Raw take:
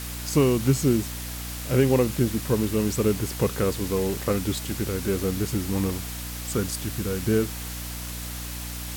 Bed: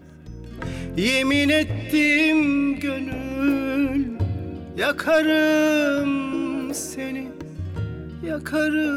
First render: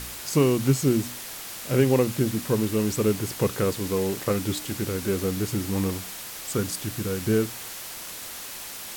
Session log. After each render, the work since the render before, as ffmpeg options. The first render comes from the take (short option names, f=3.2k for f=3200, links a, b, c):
-af "bandreject=f=60:t=h:w=4,bandreject=f=120:t=h:w=4,bandreject=f=180:t=h:w=4,bandreject=f=240:t=h:w=4,bandreject=f=300:t=h:w=4"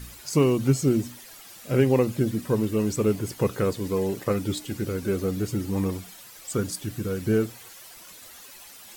-af "afftdn=nr=12:nf=-38"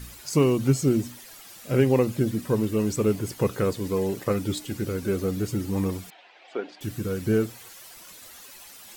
-filter_complex "[0:a]asettb=1/sr,asplit=3[a][b][c];[a]atrim=end=6.104[d];[b]atrim=start=6.1:end=6.81,asetpts=PTS-STARTPTS,afade=t=in:d=0.004:c=qsin,afade=t=out:st=0.706:d=0.004:c=qsin,highpass=f=340:w=0.5412,highpass=f=340:w=1.3066,equalizer=f=490:t=q:w=4:g=-3,equalizer=f=740:t=q:w=4:g=10,equalizer=f=1.2k:t=q:w=4:g=-7,equalizer=f=2.5k:t=q:w=4:g=3,lowpass=f=3.3k:w=0.5412,lowpass=f=3.3k:w=1.3066[e];[c]atrim=start=6.806[f];[d][e]acrossfade=d=0.004:c1=hsin:c2=qsin[g];[g][f]acrossfade=d=0.004:c1=qsin:c2=hsin"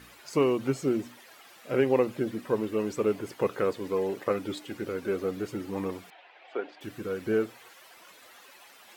-af "highpass=f=140:p=1,bass=f=250:g=-11,treble=f=4k:g=-13"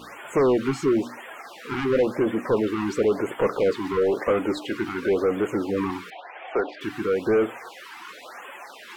-filter_complex "[0:a]asplit=2[a][b];[b]highpass=f=720:p=1,volume=25dB,asoftclip=type=tanh:threshold=-11dB[c];[a][c]amix=inputs=2:normalize=0,lowpass=f=1.2k:p=1,volume=-6dB,afftfilt=real='re*(1-between(b*sr/1024,510*pow(5100/510,0.5+0.5*sin(2*PI*0.97*pts/sr))/1.41,510*pow(5100/510,0.5+0.5*sin(2*PI*0.97*pts/sr))*1.41))':imag='im*(1-between(b*sr/1024,510*pow(5100/510,0.5+0.5*sin(2*PI*0.97*pts/sr))/1.41,510*pow(5100/510,0.5+0.5*sin(2*PI*0.97*pts/sr))*1.41))':win_size=1024:overlap=0.75"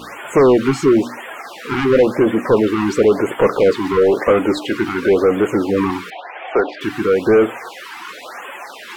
-af "volume=8.5dB"